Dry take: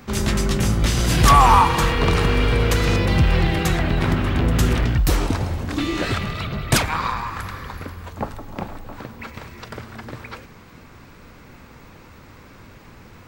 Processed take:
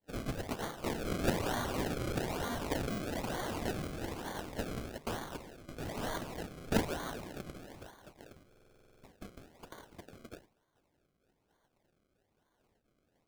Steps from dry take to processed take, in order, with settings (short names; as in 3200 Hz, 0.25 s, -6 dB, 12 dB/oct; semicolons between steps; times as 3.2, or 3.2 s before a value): expander -33 dBFS; FFT band-pass 1400–10000 Hz; decimation with a swept rate 33×, swing 100% 1.1 Hz; stuck buffer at 8.48, samples 2048, times 11; gain -7.5 dB